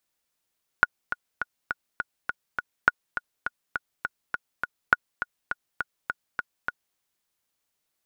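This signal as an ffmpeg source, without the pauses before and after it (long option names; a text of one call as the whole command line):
ffmpeg -f lavfi -i "aevalsrc='pow(10,(-3-11*gte(mod(t,7*60/205),60/205))/20)*sin(2*PI*1450*mod(t,60/205))*exp(-6.91*mod(t,60/205)/0.03)':duration=6.14:sample_rate=44100" out.wav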